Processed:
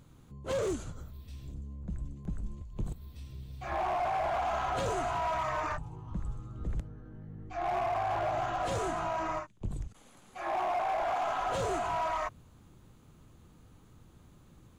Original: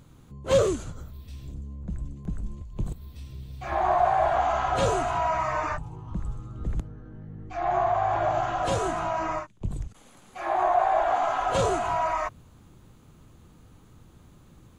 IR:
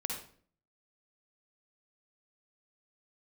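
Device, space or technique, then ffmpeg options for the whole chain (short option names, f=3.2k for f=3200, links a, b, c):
limiter into clipper: -af "alimiter=limit=-18dB:level=0:latency=1:release=16,asoftclip=type=hard:threshold=-23dB,volume=-4.5dB"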